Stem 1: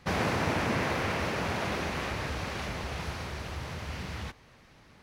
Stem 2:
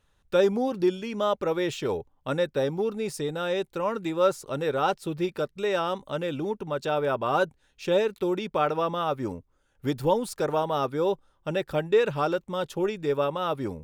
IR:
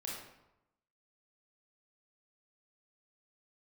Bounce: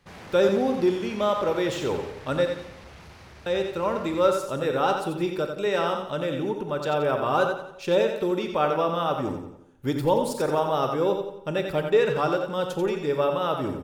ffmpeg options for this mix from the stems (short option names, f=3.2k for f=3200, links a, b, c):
-filter_complex "[0:a]asoftclip=type=tanh:threshold=-33dB,volume=-11dB,asplit=2[a][b];[b]volume=-3.5dB[c];[1:a]volume=-1.5dB,asplit=3[d][e][f];[d]atrim=end=2.46,asetpts=PTS-STARTPTS,afade=t=out:st=2.456:d=0.004:c=hsin[g];[e]atrim=start=2.46:end=3.46,asetpts=PTS-STARTPTS,volume=0[h];[f]atrim=start=3.46,asetpts=PTS-STARTPTS,afade=t=in:d=0.004:c=hsin[i];[g][h][i]concat=n=3:v=0:a=1,asplit=3[j][k][l];[k]volume=-5dB[m];[l]volume=-4.5dB[n];[2:a]atrim=start_sample=2205[o];[c][m]amix=inputs=2:normalize=0[p];[p][o]afir=irnorm=-1:irlink=0[q];[n]aecho=0:1:88|176|264|352|440|528:1|0.42|0.176|0.0741|0.0311|0.0131[r];[a][j][q][r]amix=inputs=4:normalize=0"